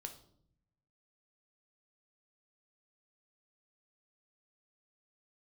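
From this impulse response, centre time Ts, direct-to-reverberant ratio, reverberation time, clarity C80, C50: 11 ms, 5.5 dB, 0.65 s, 15.0 dB, 11.5 dB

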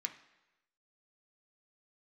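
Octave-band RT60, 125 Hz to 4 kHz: 0.95 s, 0.85 s, 1.0 s, 1.0 s, 1.0 s, 0.95 s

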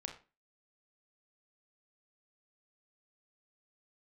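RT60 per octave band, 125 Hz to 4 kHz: 0.35 s, 0.40 s, 0.30 s, 0.30 s, 0.30 s, 0.25 s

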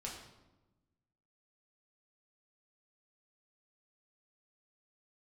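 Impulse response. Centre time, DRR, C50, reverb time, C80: 41 ms, -3.0 dB, 4.5 dB, 1.1 s, 7.0 dB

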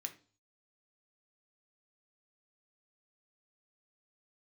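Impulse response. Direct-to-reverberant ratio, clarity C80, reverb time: 5.0 dB, 20.0 dB, 0.40 s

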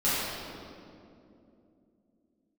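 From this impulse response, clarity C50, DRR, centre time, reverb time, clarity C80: -4.0 dB, -13.0 dB, 160 ms, 2.7 s, -1.5 dB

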